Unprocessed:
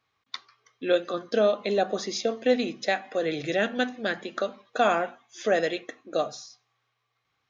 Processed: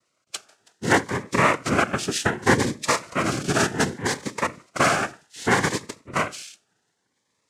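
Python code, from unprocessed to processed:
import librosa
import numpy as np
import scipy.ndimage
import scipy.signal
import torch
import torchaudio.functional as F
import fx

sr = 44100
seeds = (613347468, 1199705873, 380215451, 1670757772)

y = fx.spec_quant(x, sr, step_db=15)
y = fx.noise_vocoder(y, sr, seeds[0], bands=3)
y = fx.notch_cascade(y, sr, direction='rising', hz=0.66)
y = F.gain(torch.from_numpy(y), 6.0).numpy()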